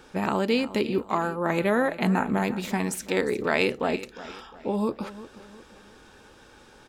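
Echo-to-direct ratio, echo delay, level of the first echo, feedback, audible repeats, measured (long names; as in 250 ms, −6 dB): −15.0 dB, 356 ms, −16.0 dB, 42%, 3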